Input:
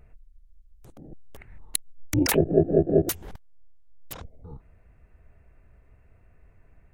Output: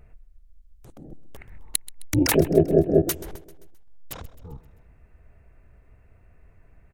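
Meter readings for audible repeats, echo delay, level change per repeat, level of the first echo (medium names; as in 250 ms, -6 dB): 4, 131 ms, -5.5 dB, -18.0 dB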